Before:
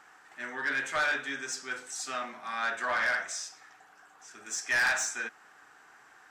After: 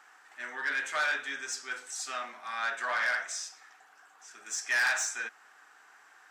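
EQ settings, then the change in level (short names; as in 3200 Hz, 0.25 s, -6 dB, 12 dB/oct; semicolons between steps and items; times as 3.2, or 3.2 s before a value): HPF 690 Hz 6 dB/oct; 0.0 dB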